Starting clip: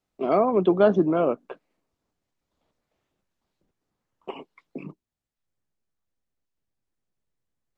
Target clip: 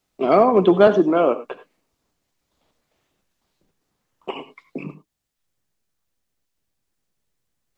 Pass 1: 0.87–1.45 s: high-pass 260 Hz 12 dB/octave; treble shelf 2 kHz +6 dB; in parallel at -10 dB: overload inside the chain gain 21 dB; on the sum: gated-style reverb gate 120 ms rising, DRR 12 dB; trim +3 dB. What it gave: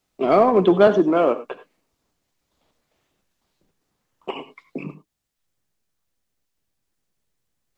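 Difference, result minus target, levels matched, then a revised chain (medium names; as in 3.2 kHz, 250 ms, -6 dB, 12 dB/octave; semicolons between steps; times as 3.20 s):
overload inside the chain: distortion +10 dB
0.87–1.45 s: high-pass 260 Hz 12 dB/octave; treble shelf 2 kHz +6 dB; in parallel at -10 dB: overload inside the chain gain 12.5 dB; on the sum: gated-style reverb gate 120 ms rising, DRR 12 dB; trim +3 dB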